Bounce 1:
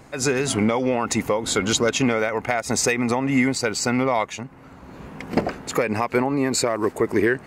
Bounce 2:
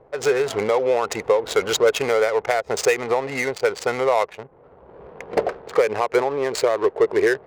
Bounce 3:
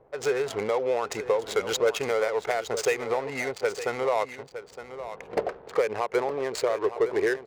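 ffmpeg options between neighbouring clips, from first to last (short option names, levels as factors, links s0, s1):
-af "adynamicsmooth=sensitivity=3:basefreq=590,lowshelf=f=340:t=q:w=3:g=-8.5"
-af "aecho=1:1:913:0.251,volume=0.473"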